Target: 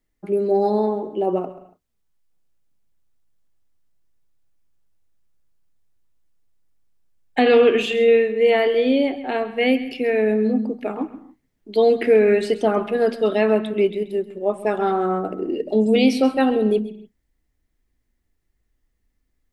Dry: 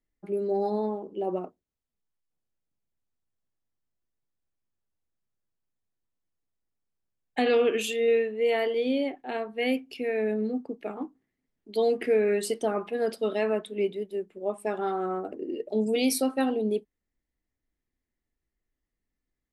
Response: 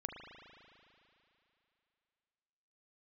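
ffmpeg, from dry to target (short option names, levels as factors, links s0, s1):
-filter_complex "[0:a]acrossover=split=4400[s0][s1];[s1]acompressor=threshold=0.00141:ratio=4:attack=1:release=60[s2];[s0][s2]amix=inputs=2:normalize=0,asplit=2[s3][s4];[s4]asubboost=boost=9:cutoff=140[s5];[1:a]atrim=start_sample=2205,afade=t=out:st=0.22:d=0.01,atrim=end_sample=10143,adelay=133[s6];[s5][s6]afir=irnorm=-1:irlink=0,volume=0.282[s7];[s3][s7]amix=inputs=2:normalize=0,volume=2.66"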